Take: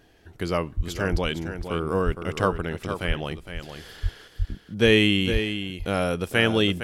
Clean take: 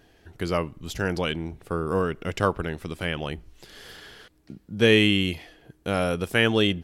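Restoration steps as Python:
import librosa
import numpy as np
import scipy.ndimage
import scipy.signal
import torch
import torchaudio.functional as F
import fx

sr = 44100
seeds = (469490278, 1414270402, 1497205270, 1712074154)

y = fx.fix_deplosive(x, sr, at_s=(0.76, 1.11, 2.05, 3.07, 4.02, 4.38, 5.32))
y = fx.fix_echo_inverse(y, sr, delay_ms=461, level_db=-9.0)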